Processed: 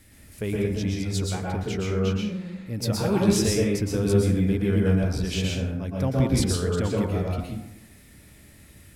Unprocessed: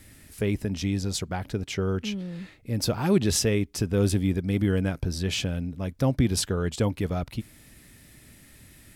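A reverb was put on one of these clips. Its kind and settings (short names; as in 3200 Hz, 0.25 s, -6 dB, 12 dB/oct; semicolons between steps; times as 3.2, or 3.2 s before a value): plate-style reverb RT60 0.84 s, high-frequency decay 0.45×, pre-delay 0.105 s, DRR -3 dB; gain -3.5 dB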